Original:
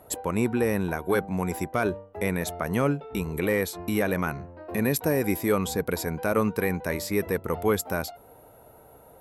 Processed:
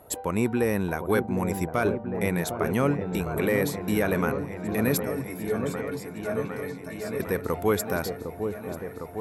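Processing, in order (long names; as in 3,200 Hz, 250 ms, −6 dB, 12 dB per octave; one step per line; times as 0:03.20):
0:05.03–0:07.20: stiff-string resonator 130 Hz, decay 0.26 s, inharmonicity 0.03
echo whose low-pass opens from repeat to repeat 756 ms, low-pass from 750 Hz, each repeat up 1 octave, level −6 dB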